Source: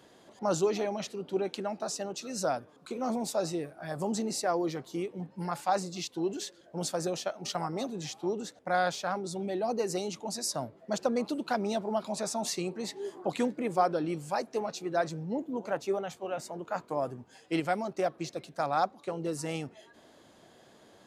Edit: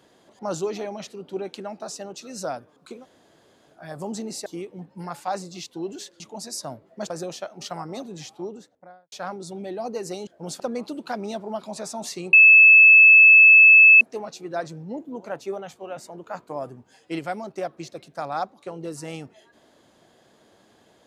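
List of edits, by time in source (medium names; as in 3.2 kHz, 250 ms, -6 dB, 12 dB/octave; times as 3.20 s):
2.98–3.74 s: room tone, crossfade 0.16 s
4.46–4.87 s: delete
6.61–6.94 s: swap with 10.11–11.01 s
8.05–8.96 s: studio fade out
12.74–14.42 s: bleep 2.61 kHz -7.5 dBFS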